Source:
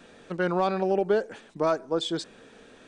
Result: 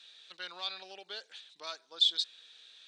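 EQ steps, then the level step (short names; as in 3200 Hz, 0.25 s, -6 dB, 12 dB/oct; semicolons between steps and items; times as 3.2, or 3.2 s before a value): band-pass 3800 Hz, Q 5.1; tilt +2 dB/oct; +7.0 dB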